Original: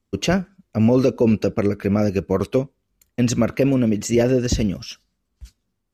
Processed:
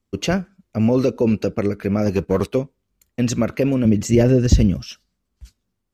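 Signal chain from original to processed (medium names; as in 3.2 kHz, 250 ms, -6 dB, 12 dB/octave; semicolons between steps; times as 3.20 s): 2.06–2.53 s: waveshaping leveller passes 1; 3.85–4.81 s: bass shelf 190 Hz +12 dB; trim -1 dB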